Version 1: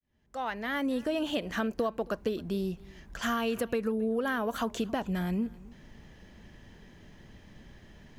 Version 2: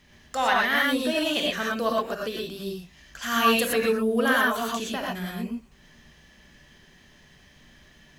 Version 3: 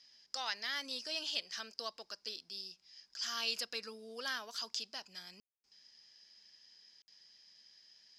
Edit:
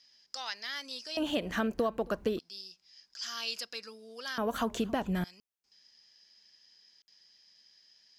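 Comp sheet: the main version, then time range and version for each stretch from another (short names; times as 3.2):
3
1.17–2.39 from 1
4.38–5.24 from 1
not used: 2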